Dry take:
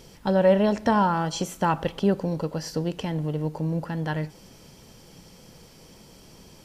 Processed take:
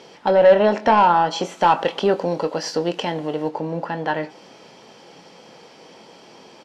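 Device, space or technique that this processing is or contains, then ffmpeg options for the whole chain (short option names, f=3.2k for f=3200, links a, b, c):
intercom: -filter_complex "[0:a]asettb=1/sr,asplit=3[a][b][c];[a]atrim=end=1.574[d];[b]atrim=start=1.57:end=3.49,asetpts=PTS-STARTPTS,afade=t=in:d=0.004:c=qsin,afade=t=out:st=1.916:d=0.004:c=qsin,highshelf=f=4.3k:g=9.5[e];[c]atrim=start=3.486[f];[d][e]acrossfade=d=0.004:c1=hsin:c2=qsin[g];[g][f]acrossfade=d=0.004:c1=qsin:c2=hsin,highpass=330,lowpass=3.9k,equalizer=f=790:t=o:w=0.5:g=4,asoftclip=type=tanh:threshold=-14.5dB,asplit=2[h][i];[i]adelay=23,volume=-10.5dB[j];[h][j]amix=inputs=2:normalize=0,volume=8dB"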